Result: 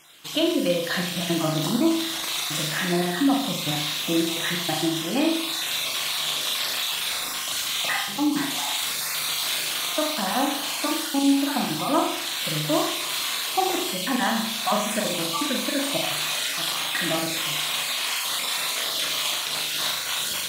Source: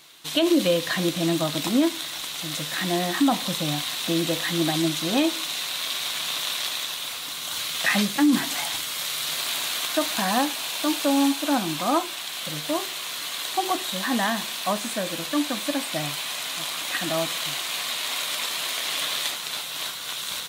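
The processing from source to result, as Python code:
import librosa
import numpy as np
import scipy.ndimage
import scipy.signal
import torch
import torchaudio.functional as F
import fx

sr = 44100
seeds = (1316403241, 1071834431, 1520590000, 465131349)

y = fx.spec_dropout(x, sr, seeds[0], share_pct=27)
y = fx.rider(y, sr, range_db=4, speed_s=0.5)
y = fx.room_flutter(y, sr, wall_m=6.8, rt60_s=0.69)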